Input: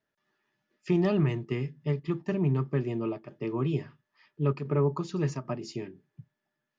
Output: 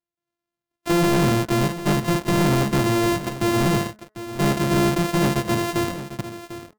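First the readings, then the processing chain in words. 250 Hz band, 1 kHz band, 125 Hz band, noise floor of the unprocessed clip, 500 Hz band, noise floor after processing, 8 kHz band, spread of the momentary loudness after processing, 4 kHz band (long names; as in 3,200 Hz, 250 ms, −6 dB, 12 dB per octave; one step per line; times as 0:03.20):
+9.5 dB, +16.5 dB, +6.0 dB, −84 dBFS, +8.0 dB, below −85 dBFS, can't be measured, 14 LU, +19.5 dB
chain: samples sorted by size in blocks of 128 samples
leveller curve on the samples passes 5
hum removal 213.5 Hz, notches 10
on a send: single-tap delay 747 ms −13 dB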